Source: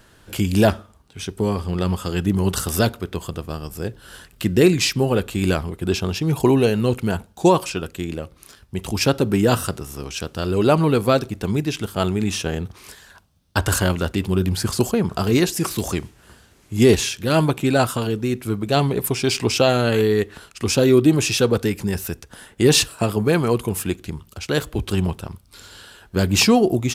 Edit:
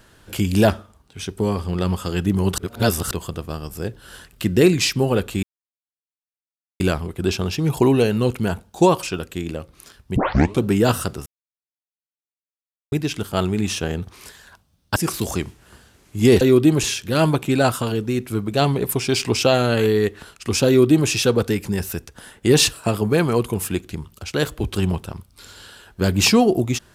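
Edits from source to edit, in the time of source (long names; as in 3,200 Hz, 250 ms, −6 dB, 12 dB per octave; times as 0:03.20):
0:02.58–0:03.11: reverse
0:05.43: splice in silence 1.37 s
0:08.79: tape start 0.47 s
0:09.89–0:11.55: silence
0:13.59–0:15.53: remove
0:20.82–0:21.24: duplicate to 0:16.98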